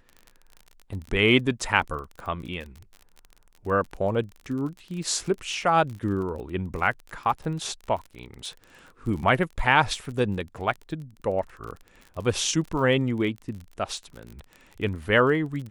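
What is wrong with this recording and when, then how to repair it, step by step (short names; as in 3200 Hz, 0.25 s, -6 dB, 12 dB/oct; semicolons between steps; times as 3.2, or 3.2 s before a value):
crackle 34/s -34 dBFS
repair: de-click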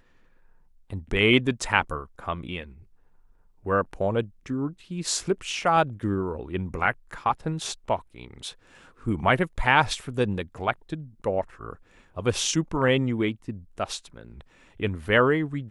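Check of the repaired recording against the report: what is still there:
none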